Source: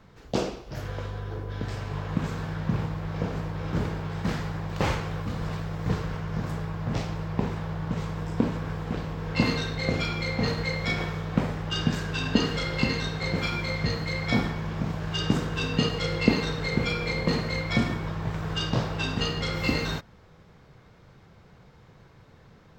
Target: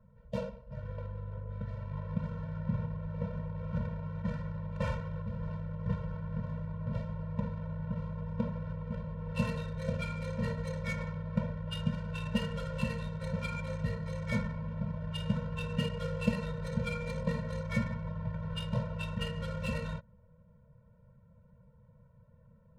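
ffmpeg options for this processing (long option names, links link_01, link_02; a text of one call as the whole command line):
ffmpeg -i in.wav -af "adynamicsmooth=sensitivity=3:basefreq=970,afftfilt=real='re*eq(mod(floor(b*sr/1024/220),2),0)':imag='im*eq(mod(floor(b*sr/1024/220),2),0)':win_size=1024:overlap=0.75,volume=-5.5dB" out.wav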